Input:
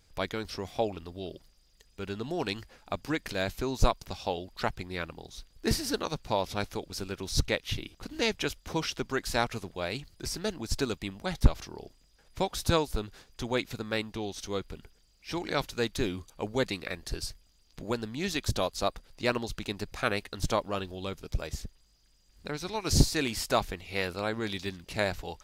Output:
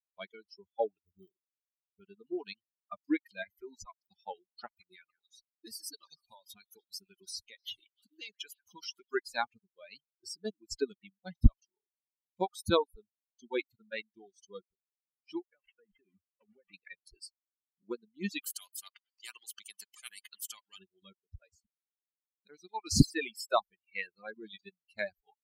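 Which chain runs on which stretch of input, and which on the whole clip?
1.04–2.01 s: dead-time distortion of 0.29 ms + tilt EQ -1.5 dB/octave
3.42–4.03 s: peaking EQ 2 kHz +12.5 dB 0.33 oct + compression 4:1, threshold -28 dBFS
4.66–9.14 s: treble shelf 3.5 kHz +10 dB + compression 4:1, threshold -31 dBFS + repeats whose band climbs or falls 152 ms, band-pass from 1.5 kHz, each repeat 1.4 oct, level -4 dB
15.42–16.74 s: one-bit delta coder 16 kbps, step -30.5 dBFS + gate with hold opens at -24 dBFS, closes at -27 dBFS + compression 16:1, threshold -34 dBFS
18.42–20.79 s: tone controls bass -4 dB, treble -9 dB + spectrum-flattening compressor 4:1
whole clip: expander on every frequency bin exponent 3; reverb removal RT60 1.4 s; dynamic bell 290 Hz, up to +5 dB, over -49 dBFS, Q 1.4; trim +2.5 dB

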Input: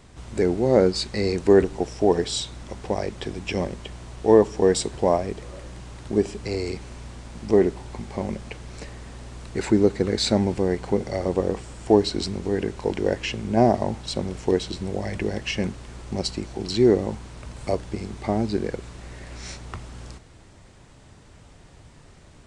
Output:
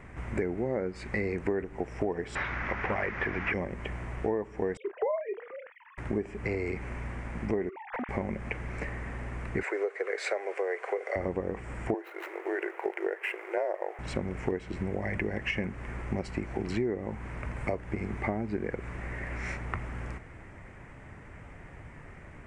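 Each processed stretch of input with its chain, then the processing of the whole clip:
2.35–3.54 s: one-bit delta coder 32 kbps, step -41 dBFS + peaking EQ 1.6 kHz +12 dB 2.1 oct + hard clipper -21 dBFS
4.77–5.98 s: formants replaced by sine waves + doubling 32 ms -13 dB
7.69–8.09 s: formants replaced by sine waves + hard clipper -33.5 dBFS
9.63–11.16 s: steep high-pass 420 Hz 48 dB/octave + band-stop 890 Hz, Q 6.9
11.94–13.99 s: median filter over 9 samples + frequency shift -71 Hz + brick-wall FIR high-pass 340 Hz
whole clip: resonant high shelf 2.9 kHz -11.5 dB, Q 3; compression 8:1, threshold -29 dBFS; trim +1.5 dB

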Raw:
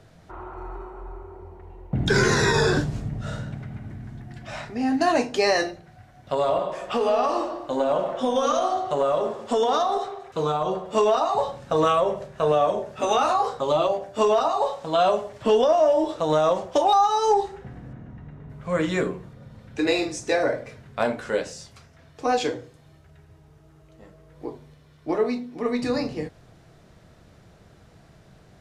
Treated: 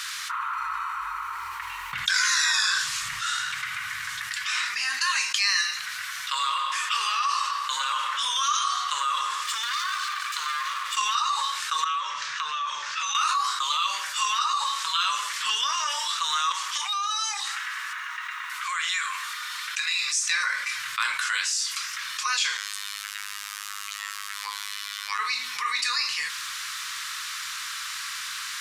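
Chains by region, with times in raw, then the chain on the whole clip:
9.43–10.97 s: comb filter that takes the minimum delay 1.7 ms + compression 3:1, threshold -38 dBFS
11.84–13.15 s: Chebyshev low-pass 6 kHz, order 3 + compression 2.5:1, threshold -36 dBFS
16.52–20.08 s: high-pass 690 Hz + compression 2:1, threshold -39 dBFS + transformer saturation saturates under 630 Hz
22.57–25.19 s: peaking EQ 140 Hz -12 dB 2.9 oct + robot voice 102 Hz
whole clip: elliptic high-pass 1.1 kHz, stop band 40 dB; treble shelf 2.2 kHz +10.5 dB; level flattener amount 70%; trim -4 dB

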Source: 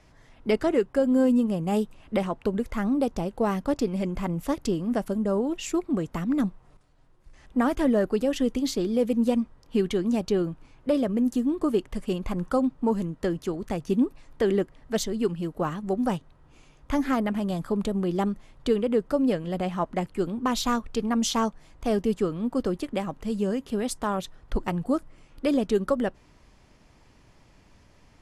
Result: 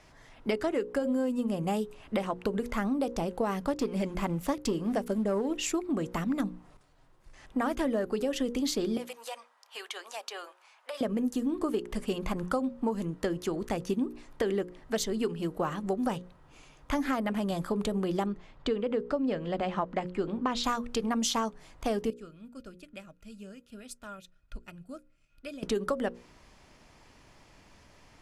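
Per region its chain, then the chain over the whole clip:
3.74–5.51 s: waveshaping leveller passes 1 + upward expansion, over -31 dBFS
8.97–11.01 s: inverse Chebyshev high-pass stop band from 160 Hz, stop band 70 dB + compression 4:1, threshold -37 dBFS
18.26–20.64 s: distance through air 110 m + band-stop 5.9 kHz, Q 27
22.10–25.63 s: amplifier tone stack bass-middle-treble 6-0-2 + small resonant body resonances 620/1400/2500 Hz, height 16 dB + transient shaper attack +2 dB, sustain -4 dB
whole clip: bass shelf 290 Hz -6 dB; hum notches 60/120/180/240/300/360/420/480/540 Hz; compression, threshold -29 dBFS; trim +3 dB

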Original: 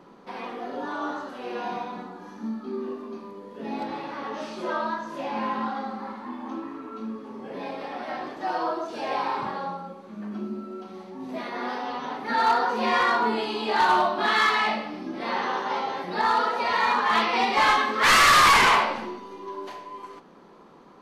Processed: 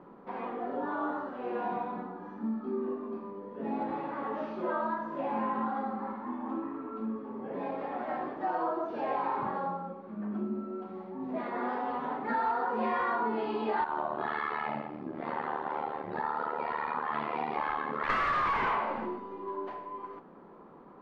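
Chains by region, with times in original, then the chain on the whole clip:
13.84–18.10 s: peaking EQ 7.2 kHz -6 dB 0.53 oct + compression 2.5:1, threshold -23 dBFS + AM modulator 75 Hz, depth 85%
whole clip: low-pass 1.5 kHz 12 dB/octave; compression, threshold -26 dBFS; trim -1 dB

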